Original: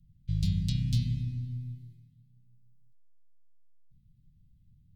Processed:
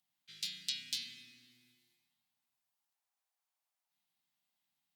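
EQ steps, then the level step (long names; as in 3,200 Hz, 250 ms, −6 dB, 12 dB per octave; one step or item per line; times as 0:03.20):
four-pole ladder high-pass 680 Hz, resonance 55%
+15.0 dB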